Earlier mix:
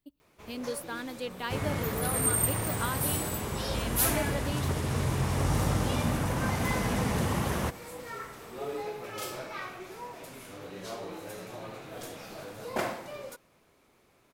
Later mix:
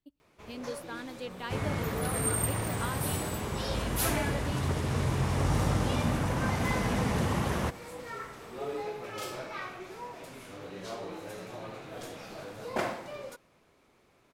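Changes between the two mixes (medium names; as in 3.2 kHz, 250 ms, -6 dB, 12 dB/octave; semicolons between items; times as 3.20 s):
speech -3.5 dB; master: add treble shelf 11 kHz -11.5 dB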